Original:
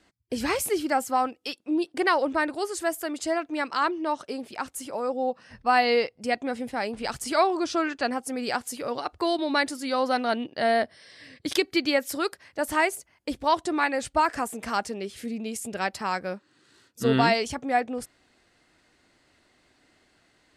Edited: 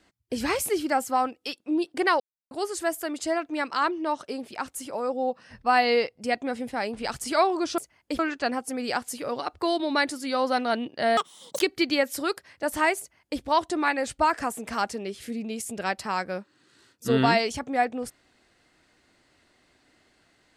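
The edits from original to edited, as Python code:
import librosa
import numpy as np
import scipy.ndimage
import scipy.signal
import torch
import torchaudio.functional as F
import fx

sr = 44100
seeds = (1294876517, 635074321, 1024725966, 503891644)

y = fx.edit(x, sr, fx.silence(start_s=2.2, length_s=0.31),
    fx.speed_span(start_s=10.76, length_s=0.8, speed=1.84),
    fx.duplicate(start_s=12.95, length_s=0.41, to_s=7.78), tone=tone)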